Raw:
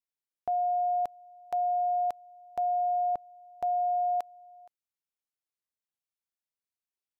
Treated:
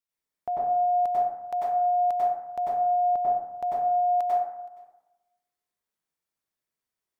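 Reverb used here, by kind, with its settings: plate-style reverb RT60 0.98 s, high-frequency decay 0.35×, pre-delay 85 ms, DRR -7 dB

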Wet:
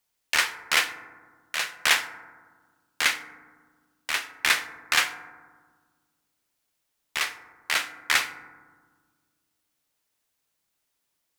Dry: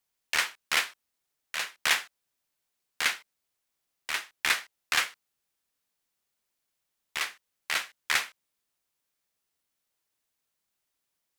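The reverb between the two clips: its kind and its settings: FDN reverb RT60 1.5 s, low-frequency decay 1.55×, high-frequency decay 0.3×, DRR 10 dB; gain +4 dB

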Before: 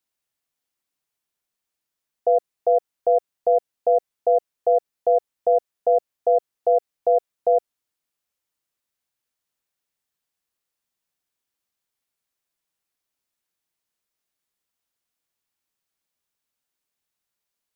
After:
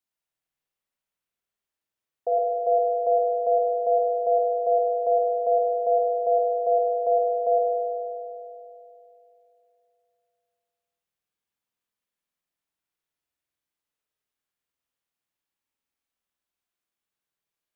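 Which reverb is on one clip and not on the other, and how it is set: spring tank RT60 2.9 s, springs 49 ms, chirp 60 ms, DRR -3 dB; gain -7.5 dB

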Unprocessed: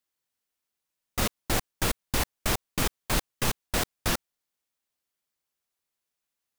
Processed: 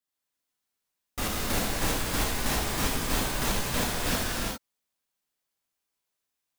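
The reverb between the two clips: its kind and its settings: non-linear reverb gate 0.43 s flat, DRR -6.5 dB; gain -6 dB

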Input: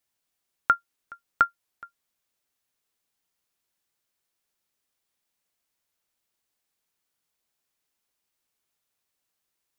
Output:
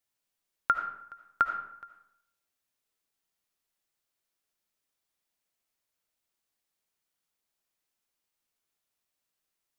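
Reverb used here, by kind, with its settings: digital reverb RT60 0.74 s, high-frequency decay 0.65×, pre-delay 35 ms, DRR 5.5 dB; gain -4.5 dB

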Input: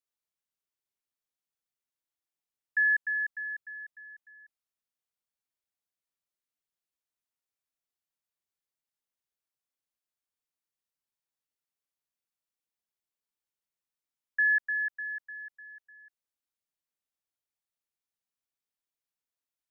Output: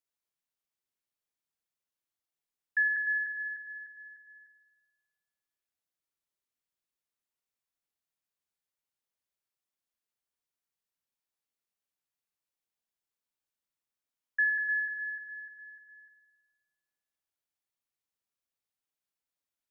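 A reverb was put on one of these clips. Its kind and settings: spring tank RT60 1.4 s, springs 51 ms, chirp 40 ms, DRR 7.5 dB; gain -1 dB

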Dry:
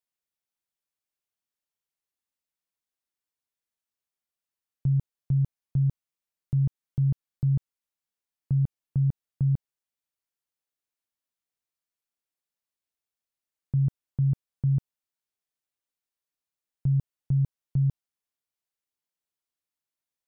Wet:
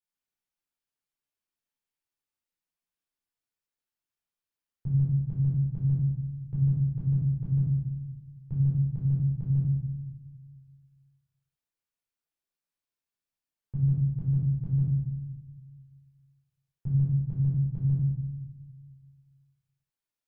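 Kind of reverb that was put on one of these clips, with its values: shoebox room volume 520 m³, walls mixed, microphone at 4.3 m; gain -11.5 dB

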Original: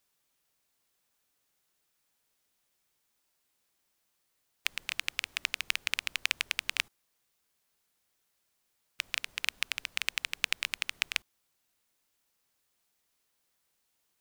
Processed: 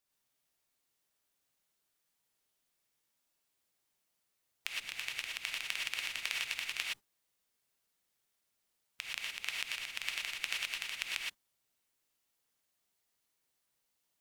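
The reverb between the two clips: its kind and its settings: non-linear reverb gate 0.14 s rising, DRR -2 dB; gain -8.5 dB

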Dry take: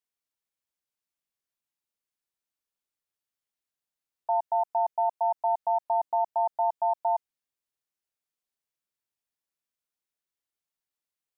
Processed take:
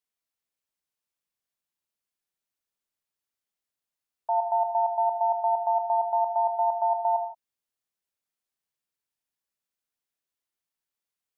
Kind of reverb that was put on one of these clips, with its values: non-linear reverb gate 0.19 s flat, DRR 7.5 dB

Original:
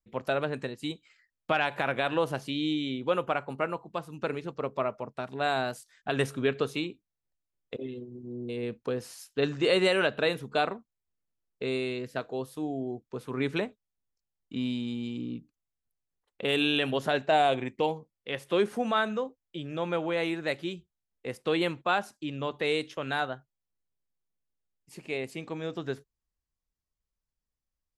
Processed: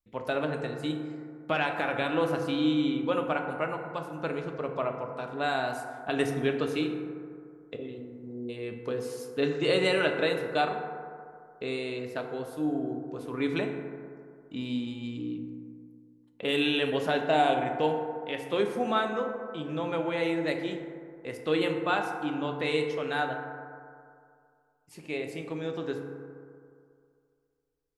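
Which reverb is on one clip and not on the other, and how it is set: FDN reverb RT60 2.3 s, low-frequency decay 0.9×, high-frequency decay 0.3×, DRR 3 dB; gain -2 dB

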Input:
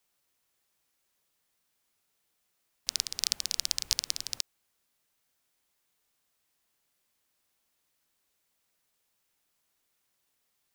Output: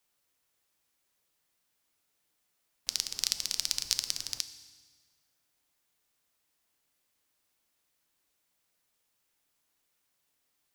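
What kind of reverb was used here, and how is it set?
FDN reverb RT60 1.5 s, low-frequency decay 1.35×, high-frequency decay 0.95×, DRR 10.5 dB; gain -1 dB

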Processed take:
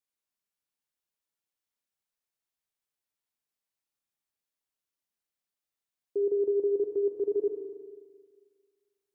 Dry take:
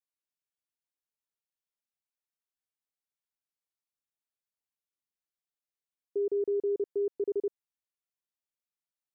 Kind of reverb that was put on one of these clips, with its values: Schroeder reverb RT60 1.8 s, combs from 28 ms, DRR 4 dB; gain +1.5 dB

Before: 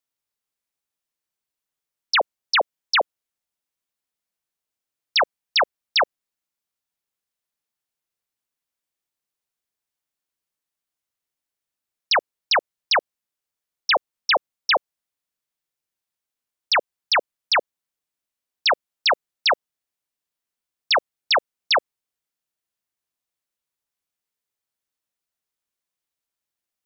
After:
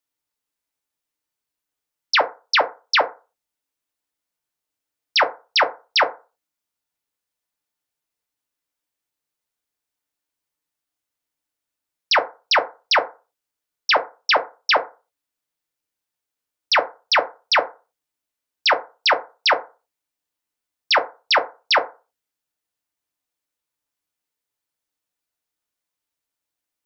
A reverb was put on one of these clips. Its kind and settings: FDN reverb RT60 0.31 s, low-frequency decay 0.8×, high-frequency decay 0.45×, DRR 4.5 dB; gain +1 dB

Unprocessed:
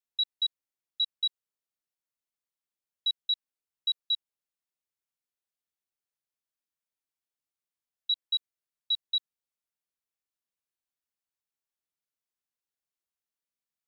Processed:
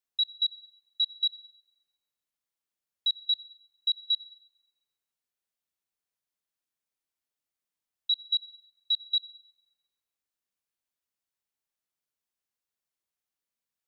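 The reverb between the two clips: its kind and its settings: digital reverb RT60 1.2 s, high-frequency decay 0.8×, pre-delay 20 ms, DRR 18.5 dB; gain +1.5 dB

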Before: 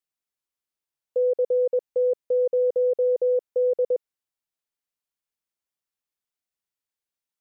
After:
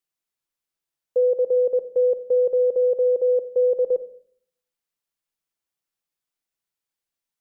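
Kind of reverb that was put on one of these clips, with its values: shoebox room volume 780 m³, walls furnished, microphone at 0.72 m; gain +2 dB

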